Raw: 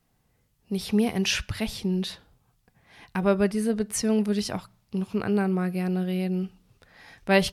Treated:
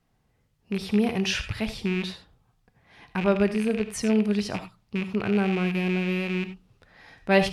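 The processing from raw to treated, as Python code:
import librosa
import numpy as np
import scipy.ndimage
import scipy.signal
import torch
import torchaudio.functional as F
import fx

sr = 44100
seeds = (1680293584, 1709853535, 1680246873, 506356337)

y = fx.rattle_buzz(x, sr, strikes_db=-33.0, level_db=-22.0)
y = fx.high_shelf(y, sr, hz=7400.0, db=-12.0)
y = fx.rev_gated(y, sr, seeds[0], gate_ms=110, shape='rising', drr_db=10.5)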